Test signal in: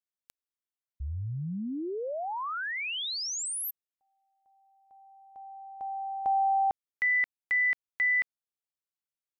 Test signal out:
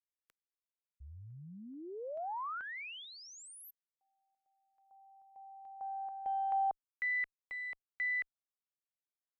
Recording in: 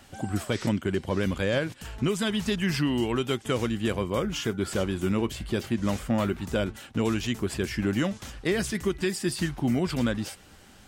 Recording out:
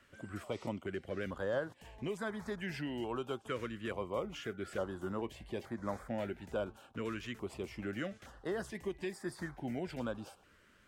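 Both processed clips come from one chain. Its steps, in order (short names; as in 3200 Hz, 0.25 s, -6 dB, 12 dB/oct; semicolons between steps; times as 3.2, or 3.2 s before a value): three-band isolator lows -12 dB, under 480 Hz, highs -15 dB, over 2200 Hz; added harmonics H 6 -42 dB, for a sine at -17.5 dBFS; stepped notch 2.3 Hz 790–2800 Hz; gain -4 dB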